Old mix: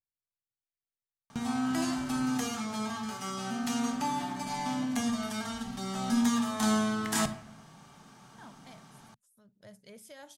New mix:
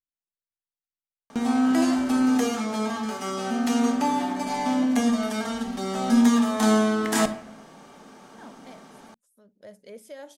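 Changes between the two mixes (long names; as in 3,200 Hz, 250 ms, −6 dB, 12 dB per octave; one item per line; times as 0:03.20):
background +3.0 dB
master: add octave-band graphic EQ 125/250/500/2,000 Hz −12/+7/+11/+3 dB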